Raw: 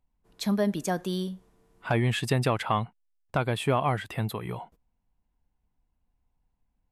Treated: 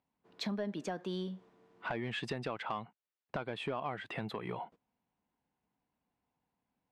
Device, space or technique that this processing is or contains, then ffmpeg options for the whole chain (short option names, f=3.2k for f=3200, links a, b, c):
AM radio: -af "highpass=200,lowpass=3.7k,acompressor=threshold=-36dB:ratio=4,asoftclip=type=tanh:threshold=-27dB,volume=1.5dB"